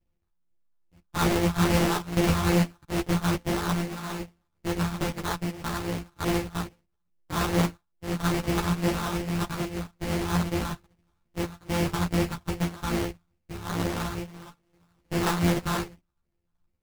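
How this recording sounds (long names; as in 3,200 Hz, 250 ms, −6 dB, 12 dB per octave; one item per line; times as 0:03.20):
a buzz of ramps at a fixed pitch in blocks of 256 samples
phaser sweep stages 4, 2.4 Hz, lowest notch 450–1,500 Hz
aliases and images of a low sample rate 2,500 Hz, jitter 20%
a shimmering, thickened sound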